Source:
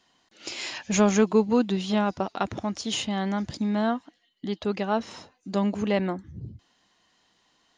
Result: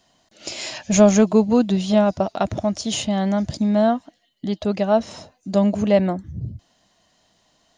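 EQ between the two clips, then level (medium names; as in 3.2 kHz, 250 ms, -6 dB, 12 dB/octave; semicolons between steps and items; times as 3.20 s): tone controls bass +10 dB, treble +4 dB; peaking EQ 630 Hz +12.5 dB 0.45 oct; treble shelf 6 kHz +5 dB; 0.0 dB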